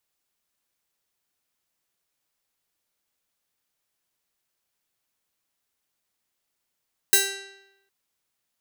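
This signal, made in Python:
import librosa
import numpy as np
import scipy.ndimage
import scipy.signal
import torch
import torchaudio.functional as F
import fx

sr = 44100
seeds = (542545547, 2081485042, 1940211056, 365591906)

y = fx.pluck(sr, length_s=0.76, note=67, decay_s=0.93, pick=0.34, brightness='bright')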